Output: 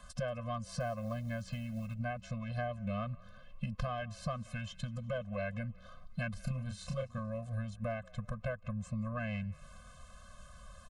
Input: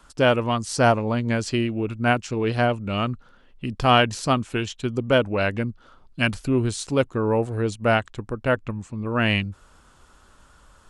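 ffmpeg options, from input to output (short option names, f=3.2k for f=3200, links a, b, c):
-filter_complex "[0:a]acrossover=split=2900[a][b];[b]acompressor=threshold=-43dB:ratio=4:attack=1:release=60[c];[a][c]amix=inputs=2:normalize=0,asplit=2[d][e];[e]alimiter=limit=-12.5dB:level=0:latency=1,volume=-2dB[f];[d][f]amix=inputs=2:normalize=0,acompressor=threshold=-28dB:ratio=16,aeval=exprs='0.237*(cos(1*acos(clip(val(0)/0.237,-1,1)))-cos(1*PI/2))+0.0944*(cos(3*acos(clip(val(0)/0.237,-1,1)))-cos(3*PI/2))+0.0237*(cos(5*acos(clip(val(0)/0.237,-1,1)))-cos(5*PI/2))+0.00168*(cos(6*acos(clip(val(0)/0.237,-1,1)))-cos(6*PI/2))':c=same,asettb=1/sr,asplit=3[g][h][i];[g]atrim=end=0.804[j];[h]atrim=start=0.8:end=1.94,asetpts=PTS-STARTPTS,afade=t=in:d=0.004:c=qsin,afade=t=out:st=1.136:d=0.004:c=qsin,acrusher=bits=7:mode=log:mix=0:aa=0.000001[k];[i]atrim=start=1.936[l];[j][k]acrossfade=d=0.004:c1=hsin:c2=qsin[m];[m][l]acrossfade=d=0.004:c1=qsin:c2=hsin,asettb=1/sr,asplit=3[n][o][p];[n]atrim=end=6.404[q];[o]atrim=start=6.4:end=7.19,asetpts=PTS-STARTPTS,afade=t=in:d=0.004:c=qsin,afade=t=out:st=0.786:d=0.004:c=qsin,asplit=2[r][s];[s]adelay=31,volume=-4dB[t];[r][t]amix=inputs=2:normalize=0,atrim=end_sample=34839[u];[p]atrim=start=7.186[v];[q][u]acrossfade=d=0.004:c1=hsin:c2=qsin[w];[w][v]acrossfade=d=0.004:c1=qsin:c2=hsin,asplit=2[x][y];[y]asplit=4[z][aa][ab][ac];[z]adelay=182,afreqshift=-46,volume=-23.5dB[ad];[aa]adelay=364,afreqshift=-92,volume=-27.9dB[ae];[ab]adelay=546,afreqshift=-138,volume=-32.4dB[af];[ac]adelay=728,afreqshift=-184,volume=-36.8dB[ag];[ad][ae][af][ag]amix=inputs=4:normalize=0[ah];[x][ah]amix=inputs=2:normalize=0,afftfilt=real='re*eq(mod(floor(b*sr/1024/250),2),0)':imag='im*eq(mod(floor(b*sr/1024/250),2),0)':win_size=1024:overlap=0.75,volume=7dB"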